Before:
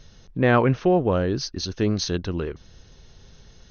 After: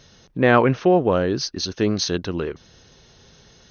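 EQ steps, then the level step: HPF 190 Hz 6 dB/oct; +4.0 dB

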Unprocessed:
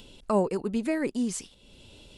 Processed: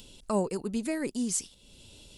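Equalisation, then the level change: tone controls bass +3 dB, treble +11 dB; -4.5 dB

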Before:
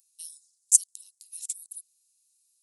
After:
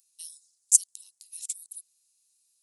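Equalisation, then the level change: high shelf 6600 Hz -6 dB; +3.5 dB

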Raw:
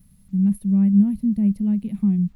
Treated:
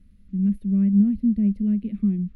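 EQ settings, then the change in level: air absorption 62 m; tone controls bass +3 dB, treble -13 dB; fixed phaser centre 350 Hz, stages 4; +2.0 dB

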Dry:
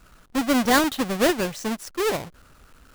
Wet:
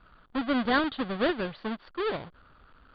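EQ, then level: dynamic EQ 930 Hz, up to -5 dB, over -34 dBFS, Q 1.4; rippled Chebyshev low-pass 4700 Hz, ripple 6 dB; air absorption 170 m; 0.0 dB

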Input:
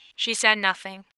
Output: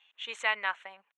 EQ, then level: running mean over 9 samples; HPF 680 Hz 12 dB/oct; -6.5 dB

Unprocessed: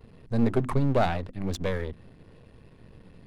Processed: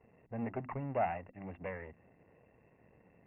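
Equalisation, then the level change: HPF 130 Hz 6 dB/oct; dynamic EQ 410 Hz, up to -6 dB, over -40 dBFS, Q 1.2; rippled Chebyshev low-pass 2800 Hz, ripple 9 dB; -3.5 dB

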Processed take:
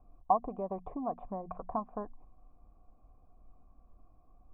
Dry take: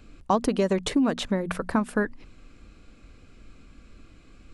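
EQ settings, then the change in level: vocal tract filter a; Bessel low-pass 3100 Hz; tilt -3.5 dB/oct; +2.5 dB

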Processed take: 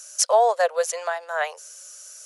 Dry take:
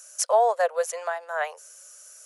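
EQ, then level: low shelf 430 Hz +3 dB; bell 4500 Hz +7.5 dB 1.7 oct; +1.0 dB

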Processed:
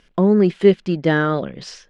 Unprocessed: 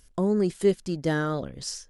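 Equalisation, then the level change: synth low-pass 2800 Hz, resonance Q 1.5; resonant low shelf 130 Hz -10 dB, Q 1.5; bell 260 Hz -5.5 dB 0.26 oct; +8.0 dB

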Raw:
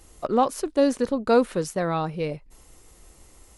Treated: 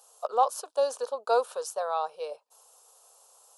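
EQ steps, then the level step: Chebyshev high-pass 420 Hz, order 4; fixed phaser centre 840 Hz, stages 4; 0.0 dB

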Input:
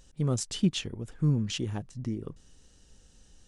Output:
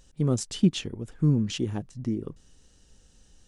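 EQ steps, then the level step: dynamic EQ 290 Hz, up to +6 dB, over -39 dBFS, Q 0.76; 0.0 dB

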